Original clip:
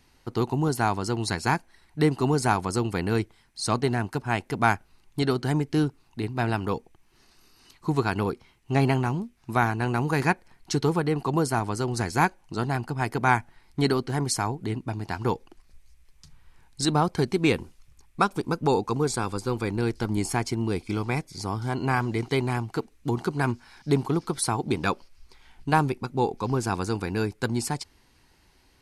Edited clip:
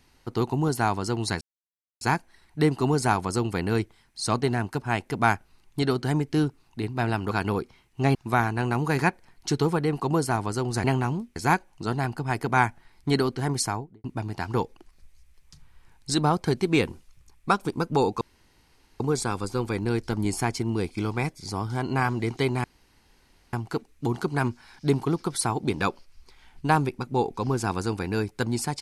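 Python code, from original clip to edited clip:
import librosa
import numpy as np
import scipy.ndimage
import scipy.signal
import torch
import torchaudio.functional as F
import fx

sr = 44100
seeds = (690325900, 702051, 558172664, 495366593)

y = fx.studio_fade_out(x, sr, start_s=14.33, length_s=0.42)
y = fx.edit(y, sr, fx.insert_silence(at_s=1.41, length_s=0.6),
    fx.cut(start_s=6.71, length_s=1.31),
    fx.move(start_s=8.86, length_s=0.52, to_s=12.07),
    fx.insert_room_tone(at_s=18.92, length_s=0.79),
    fx.insert_room_tone(at_s=22.56, length_s=0.89), tone=tone)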